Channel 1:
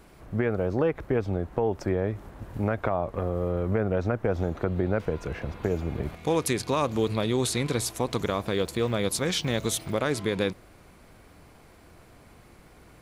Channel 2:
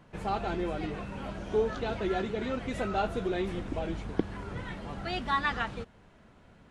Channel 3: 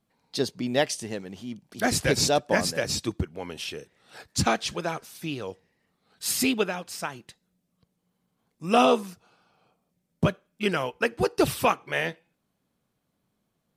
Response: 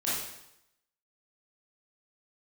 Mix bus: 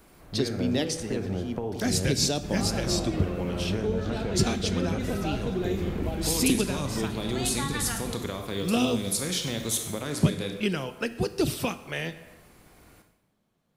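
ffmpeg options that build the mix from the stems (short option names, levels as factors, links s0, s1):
-filter_complex "[0:a]aemphasis=mode=production:type=50kf,bandreject=f=60:t=h:w=6,bandreject=f=120:t=h:w=6,volume=0.531,asplit=2[s0][s1];[s1]volume=0.316[s2];[1:a]adelay=2300,volume=1.26,asplit=2[s3][s4];[s4]volume=0.237[s5];[2:a]volume=1.19,asplit=2[s6][s7];[s7]volume=0.0944[s8];[3:a]atrim=start_sample=2205[s9];[s2][s5][s8]amix=inputs=3:normalize=0[s10];[s10][s9]afir=irnorm=-1:irlink=0[s11];[s0][s3][s6][s11]amix=inputs=4:normalize=0,acrossover=split=340|3000[s12][s13][s14];[s13]acompressor=threshold=0.02:ratio=6[s15];[s12][s15][s14]amix=inputs=3:normalize=0,highshelf=f=6400:g=-5.5"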